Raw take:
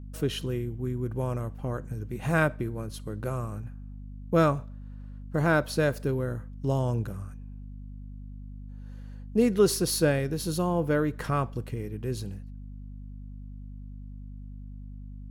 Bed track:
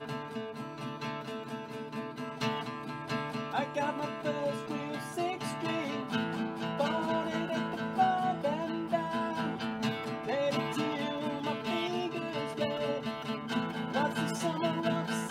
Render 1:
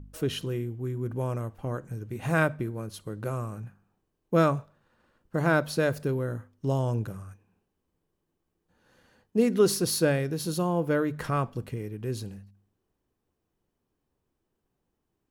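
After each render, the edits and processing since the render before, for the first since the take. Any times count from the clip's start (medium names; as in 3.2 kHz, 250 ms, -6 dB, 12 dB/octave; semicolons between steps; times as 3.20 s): de-hum 50 Hz, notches 5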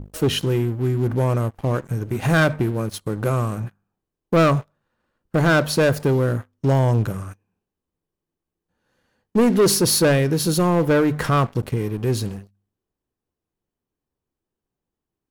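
waveshaping leveller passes 3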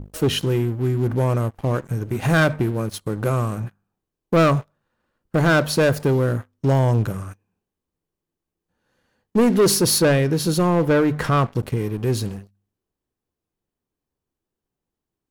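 9.98–11.54 s: treble shelf 7.6 kHz -5.5 dB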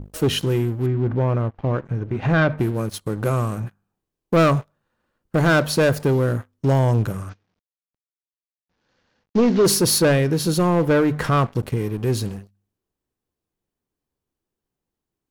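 0.86–2.58 s: distance through air 230 m; 7.29–9.65 s: CVSD coder 32 kbps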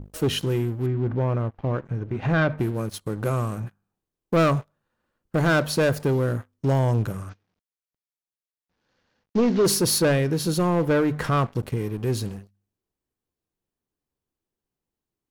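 trim -3.5 dB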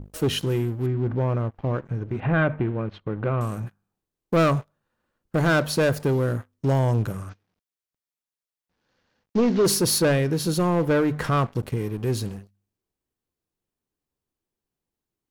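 2.20–3.41 s: low-pass 3 kHz 24 dB/octave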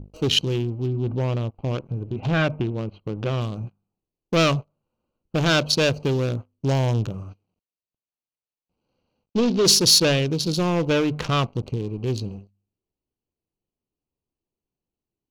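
local Wiener filter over 25 samples; high-order bell 4.2 kHz +12 dB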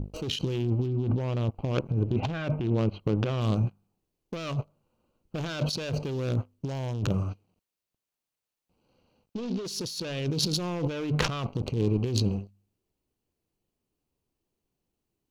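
compressor with a negative ratio -29 dBFS, ratio -1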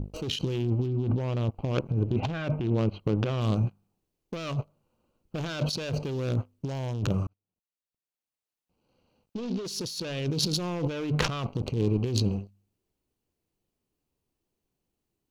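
7.27–9.47 s: fade in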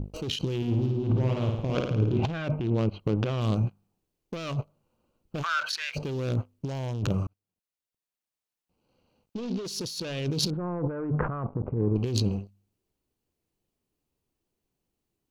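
0.57–2.25 s: flutter echo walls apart 9.3 m, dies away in 0.86 s; 5.42–5.95 s: resonant high-pass 1.1 kHz -> 2.3 kHz, resonance Q 11; 10.50–11.96 s: steep low-pass 1.6 kHz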